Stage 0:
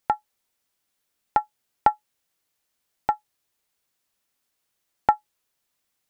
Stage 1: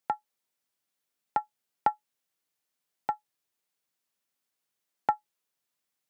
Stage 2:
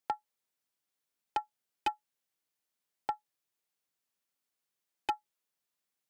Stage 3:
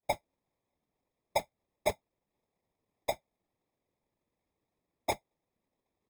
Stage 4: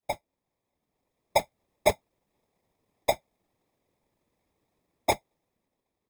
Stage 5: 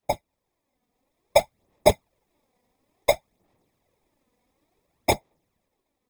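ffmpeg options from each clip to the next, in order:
ffmpeg -i in.wav -af "highpass=frequency=110:width=0.5412,highpass=frequency=110:width=1.3066,volume=-7dB" out.wav
ffmpeg -i in.wav -af "aeval=exprs='0.119*(abs(mod(val(0)/0.119+3,4)-2)-1)':channel_layout=same,volume=-3.5dB" out.wav
ffmpeg -i in.wav -filter_complex "[0:a]acrossover=split=1400[link_01][link_02];[link_02]adelay=30[link_03];[link_01][link_03]amix=inputs=2:normalize=0,acrusher=samples=30:mix=1:aa=0.000001,afftfilt=real='hypot(re,im)*cos(2*PI*random(0))':imag='hypot(re,im)*sin(2*PI*random(1))':win_size=512:overlap=0.75,volume=8dB" out.wav
ffmpeg -i in.wav -af "dynaudnorm=framelen=410:gausssize=5:maxgain=8dB" out.wav
ffmpeg -i in.wav -af "aphaser=in_gain=1:out_gain=1:delay=4.1:decay=0.48:speed=0.57:type=sinusoidal,volume=3.5dB" out.wav

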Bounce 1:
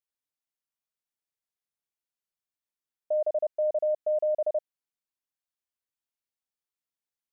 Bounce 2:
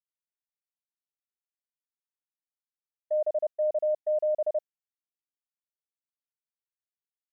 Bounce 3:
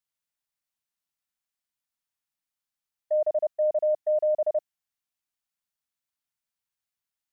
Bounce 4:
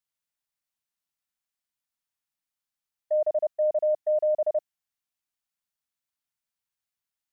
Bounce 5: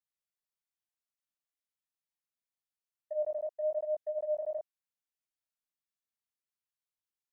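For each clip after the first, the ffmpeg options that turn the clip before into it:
ffmpeg -i in.wav -af "agate=range=-33dB:threshold=-27dB:ratio=3:detection=peak" out.wav
ffmpeg -i in.wav -af "equalizer=frequency=420:width=2.4:gain=-14.5,volume=6.5dB" out.wav
ffmpeg -i in.wav -af anull out.wav
ffmpeg -i in.wav -af "flanger=delay=18:depth=4.5:speed=1,volume=-6dB" out.wav

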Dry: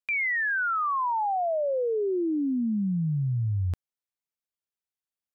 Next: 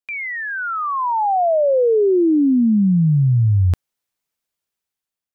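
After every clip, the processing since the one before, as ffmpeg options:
ffmpeg -i in.wav -af "dynaudnorm=framelen=470:gausssize=5:maxgain=12dB" out.wav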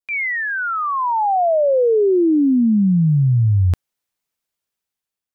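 ffmpeg -i in.wav -af "adynamicequalizer=threshold=0.0126:dfrequency=2200:dqfactor=1.4:tfrequency=2200:tqfactor=1.4:attack=5:release=100:ratio=0.375:range=2.5:mode=boostabove:tftype=bell" out.wav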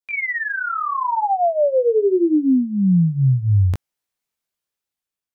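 ffmpeg -i in.wav -af "flanger=delay=19:depth=4.4:speed=0.8,volume=1dB" out.wav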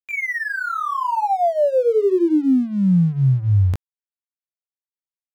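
ffmpeg -i in.wav -af "aeval=exprs='sgn(val(0))*max(abs(val(0))-0.00631,0)':channel_layout=same" out.wav

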